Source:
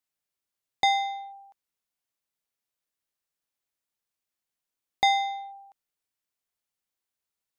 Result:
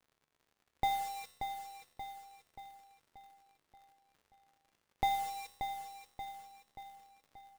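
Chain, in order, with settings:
spectral tilt −4.5 dB per octave
bit-depth reduction 6 bits, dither none
surface crackle 96 per second −41 dBFS
tuned comb filter 73 Hz, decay 1.1 s, harmonics all, mix 70%
on a send: repeating echo 581 ms, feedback 53%, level −7.5 dB
on the sum: one half of a high-frequency compander decoder only
level −1 dB

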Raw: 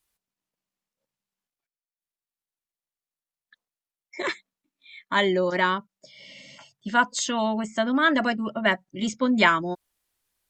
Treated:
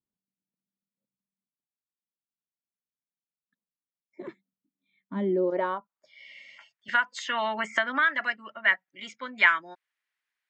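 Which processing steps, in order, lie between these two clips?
band-pass filter sweep 200 Hz → 1,900 Hz, 0:05.17–0:06.20
0:06.88–0:08.19: multiband upward and downward compressor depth 100%
level +3 dB

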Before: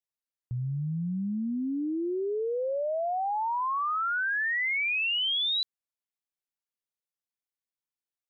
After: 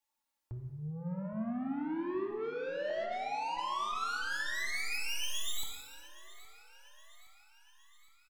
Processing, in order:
stylus tracing distortion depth 0.067 ms
0:02.90–0:03.40: Butterworth low-pass 1,800 Hz 96 dB per octave
parametric band 900 Hz +13.5 dB 0.34 octaves
comb filter 3.6 ms, depth 90%
brickwall limiter −29 dBFS, peak gain reduction 20 dB
soft clipping −40 dBFS, distortion −10 dB
repeating echo 817 ms, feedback 57%, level −19.5 dB
reverb whose tail is shaped and stops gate 480 ms falling, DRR 2 dB
level +3 dB

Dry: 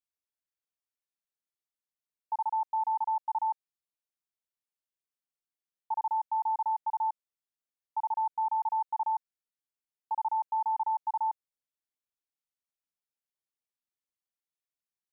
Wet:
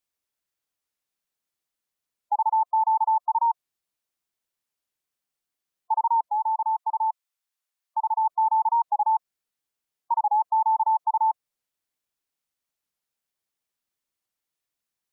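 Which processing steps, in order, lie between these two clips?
gate on every frequency bin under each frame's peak −30 dB strong
0:06.30–0:08.23: high-pass filter 930 Hz → 730 Hz 12 dB per octave
wow of a warped record 45 rpm, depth 100 cents
level +8 dB

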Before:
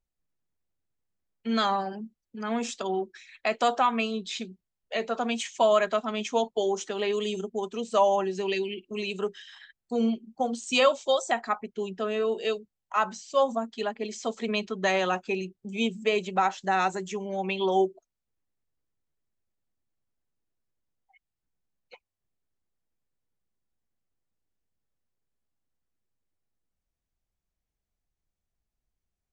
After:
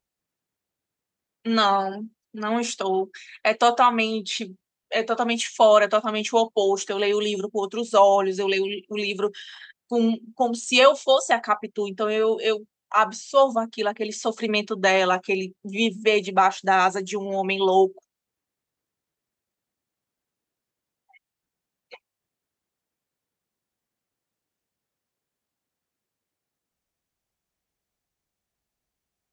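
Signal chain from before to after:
high-pass filter 210 Hz 6 dB per octave
level +6.5 dB

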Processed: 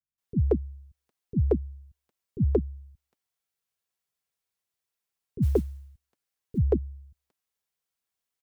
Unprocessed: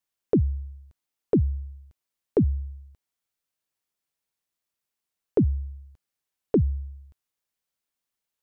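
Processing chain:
notch comb filter 300 Hz
multiband delay without the direct sound lows, highs 180 ms, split 230 Hz
0:05.42–0:06.58: noise that follows the level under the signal 31 dB

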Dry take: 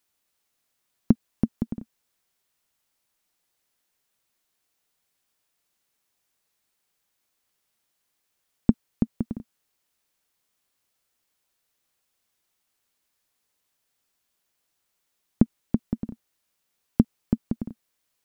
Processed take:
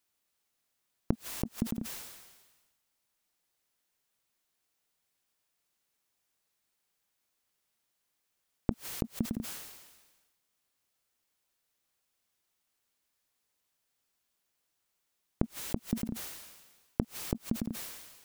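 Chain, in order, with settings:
gate with flip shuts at −10 dBFS, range −29 dB
level that may fall only so fast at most 45 dB per second
level −4 dB

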